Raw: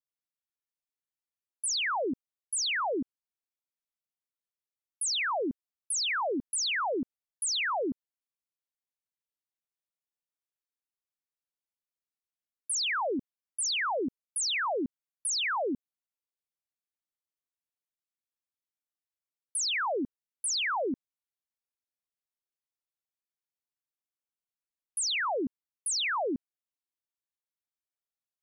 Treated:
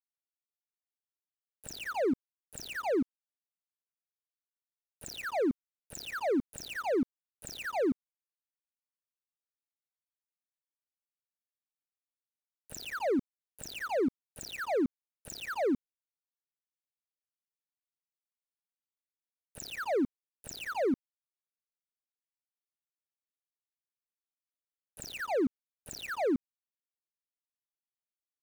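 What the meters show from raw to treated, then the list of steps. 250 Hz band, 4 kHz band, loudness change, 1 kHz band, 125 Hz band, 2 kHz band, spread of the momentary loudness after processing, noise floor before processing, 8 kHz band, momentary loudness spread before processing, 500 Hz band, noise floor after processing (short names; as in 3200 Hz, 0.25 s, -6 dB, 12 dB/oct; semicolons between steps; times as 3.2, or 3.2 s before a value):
+3.5 dB, -14.5 dB, -3.5 dB, -5.5 dB, +4.5 dB, -7.5 dB, 14 LU, under -85 dBFS, -15.5 dB, 10 LU, +2.0 dB, under -85 dBFS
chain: median filter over 41 samples; crossover distortion -56.5 dBFS; gain +4 dB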